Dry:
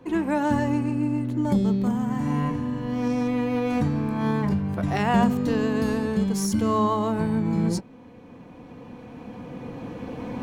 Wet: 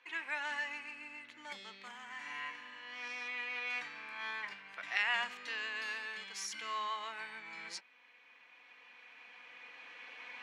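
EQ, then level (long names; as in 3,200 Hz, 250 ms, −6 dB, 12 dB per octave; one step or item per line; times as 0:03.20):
four-pole ladder band-pass 2,600 Hz, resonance 40%
+9.5 dB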